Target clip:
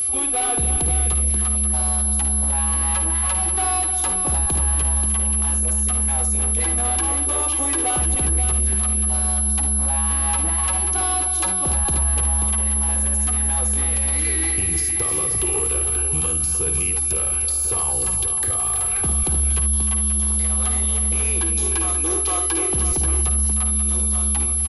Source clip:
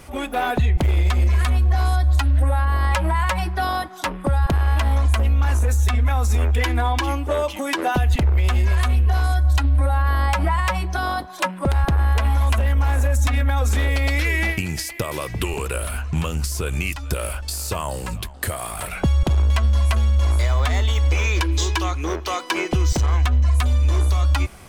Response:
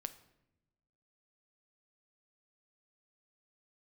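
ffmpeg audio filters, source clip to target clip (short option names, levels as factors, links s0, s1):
-filter_complex "[0:a]bandreject=f=660:w=12,acrossover=split=190|1800[s0][s1][s2];[s1]aecho=1:1:2.5:0.75[s3];[s2]acompressor=threshold=0.00794:ratio=6[s4];[s0][s3][s4]amix=inputs=3:normalize=0,asoftclip=type=tanh:threshold=0.112,aecho=1:1:53|58|74|244|305|534:0.316|0.141|0.251|0.112|0.335|0.398,aeval=exprs='val(0)+0.0447*sin(2*PI*11000*n/s)':c=same,aexciter=amount=6.5:drive=1.7:freq=2700,highshelf=f=3800:g=-8,volume=0.75"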